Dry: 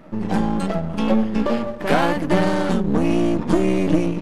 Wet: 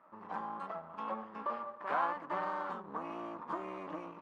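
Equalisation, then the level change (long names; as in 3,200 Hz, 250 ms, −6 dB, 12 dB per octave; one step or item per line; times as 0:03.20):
resonant band-pass 1,100 Hz, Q 4.2
−4.5 dB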